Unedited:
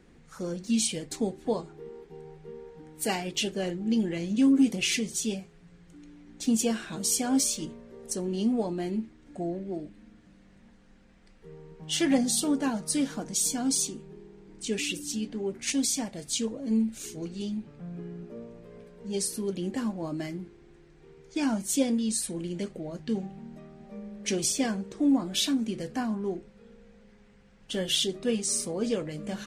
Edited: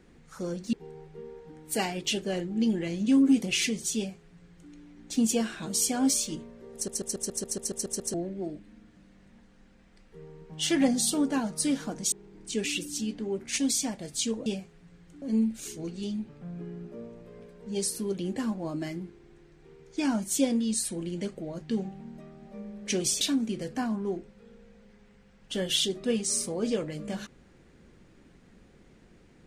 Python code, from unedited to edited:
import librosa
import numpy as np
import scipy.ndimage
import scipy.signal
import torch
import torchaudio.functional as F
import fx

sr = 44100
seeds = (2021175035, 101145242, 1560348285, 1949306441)

y = fx.edit(x, sr, fx.cut(start_s=0.73, length_s=1.3),
    fx.duplicate(start_s=5.26, length_s=0.76, to_s=16.6),
    fx.stutter_over(start_s=8.04, slice_s=0.14, count=10),
    fx.cut(start_s=13.42, length_s=0.84),
    fx.cut(start_s=24.59, length_s=0.81), tone=tone)